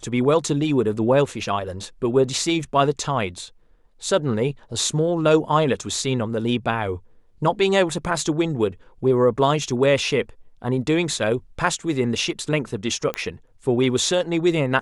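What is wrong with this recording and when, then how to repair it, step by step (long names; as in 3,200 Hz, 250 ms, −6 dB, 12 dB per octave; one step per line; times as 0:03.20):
0:13.14: click −11 dBFS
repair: click removal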